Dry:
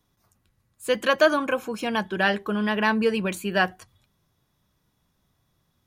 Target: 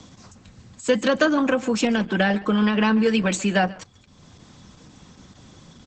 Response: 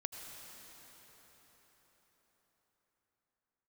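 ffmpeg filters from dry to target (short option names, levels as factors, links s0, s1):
-filter_complex "[0:a]bass=f=250:g=8,treble=f=4000:g=2,aecho=1:1:3.9:0.46,acrossover=split=310|630[s0][s1][s2];[s0]acompressor=threshold=0.0282:ratio=4[s3];[s1]acompressor=threshold=0.0251:ratio=4[s4];[s2]acompressor=threshold=0.0316:ratio=4[s5];[s3][s4][s5]amix=inputs=3:normalize=0,highshelf=f=11000:g=6,asplit=2[s6][s7];[s7]aecho=0:1:139:0.106[s8];[s6][s8]amix=inputs=2:normalize=0,volume=5.96,asoftclip=hard,volume=0.168,highpass=100,acompressor=mode=upward:threshold=0.01:ratio=2.5,volume=2.37" -ar 48000 -c:a libopus -b:a 10k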